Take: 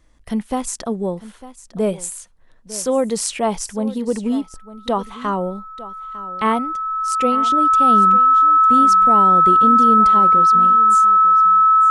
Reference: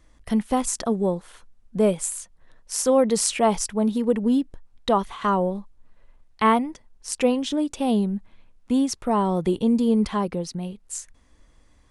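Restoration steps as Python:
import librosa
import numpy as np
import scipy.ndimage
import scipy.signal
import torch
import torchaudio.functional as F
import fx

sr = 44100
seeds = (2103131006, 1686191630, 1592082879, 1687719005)

y = fx.notch(x, sr, hz=1300.0, q=30.0)
y = fx.fix_echo_inverse(y, sr, delay_ms=902, level_db=-16.5)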